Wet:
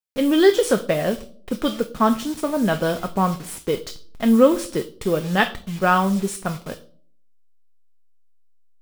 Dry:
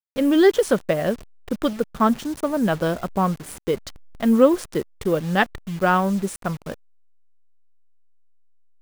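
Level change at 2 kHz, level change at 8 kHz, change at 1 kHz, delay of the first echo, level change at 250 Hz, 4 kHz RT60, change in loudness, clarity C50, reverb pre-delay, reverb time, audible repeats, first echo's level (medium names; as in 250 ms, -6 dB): +1.0 dB, +4.0 dB, +1.0 dB, no echo, +0.5 dB, 0.35 s, +1.0 dB, 14.5 dB, 4 ms, 0.50 s, no echo, no echo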